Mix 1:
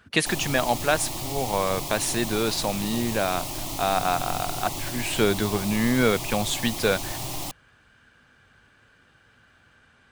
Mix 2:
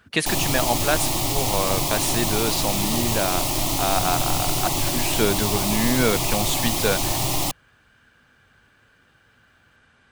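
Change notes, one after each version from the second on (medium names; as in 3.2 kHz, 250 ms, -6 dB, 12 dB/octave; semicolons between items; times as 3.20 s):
background +9.0 dB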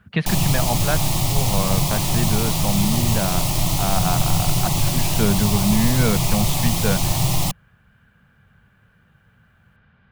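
speech: add distance through air 330 m; master: add resonant low shelf 230 Hz +6 dB, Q 3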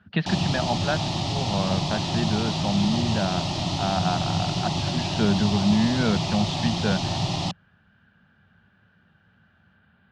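master: add cabinet simulation 100–4900 Hz, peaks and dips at 130 Hz -9 dB, 480 Hz -6 dB, 1.1 kHz -6 dB, 2.2 kHz -8 dB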